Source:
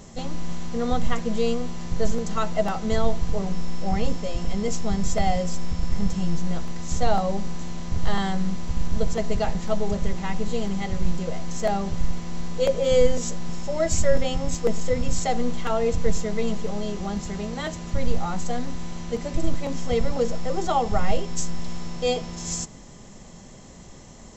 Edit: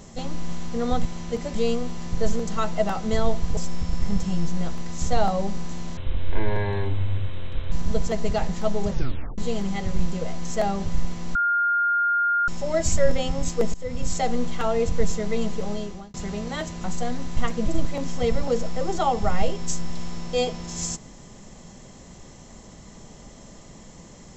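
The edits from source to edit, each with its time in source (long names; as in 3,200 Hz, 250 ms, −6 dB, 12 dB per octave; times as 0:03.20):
0:01.05–0:01.34: swap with 0:18.85–0:19.35
0:03.36–0:05.47: remove
0:07.87–0:08.78: play speed 52%
0:09.97: tape stop 0.47 s
0:12.41–0:13.54: beep over 1,410 Hz −18.5 dBFS
0:14.80–0:15.38: fade in equal-power, from −20 dB
0:16.79–0:17.20: fade out
0:17.90–0:18.32: remove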